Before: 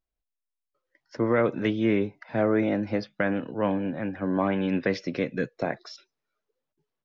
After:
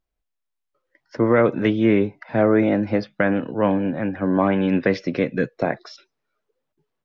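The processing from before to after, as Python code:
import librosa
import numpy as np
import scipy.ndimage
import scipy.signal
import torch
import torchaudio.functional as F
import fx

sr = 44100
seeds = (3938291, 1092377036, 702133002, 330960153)

y = fx.high_shelf(x, sr, hz=4900.0, db=-9.5)
y = y * librosa.db_to_amplitude(6.5)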